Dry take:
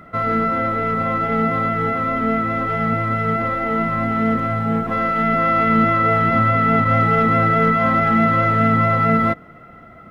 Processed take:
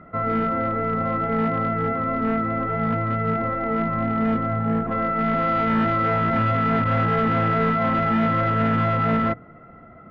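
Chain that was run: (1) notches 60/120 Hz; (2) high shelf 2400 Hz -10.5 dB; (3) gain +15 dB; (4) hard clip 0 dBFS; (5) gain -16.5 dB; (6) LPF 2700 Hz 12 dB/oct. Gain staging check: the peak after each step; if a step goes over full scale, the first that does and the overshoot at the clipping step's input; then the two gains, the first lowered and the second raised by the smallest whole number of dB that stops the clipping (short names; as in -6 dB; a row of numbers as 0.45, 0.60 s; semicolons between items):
-5.0, -6.0, +9.0, 0.0, -16.5, -16.0 dBFS; step 3, 9.0 dB; step 3 +6 dB, step 5 -7.5 dB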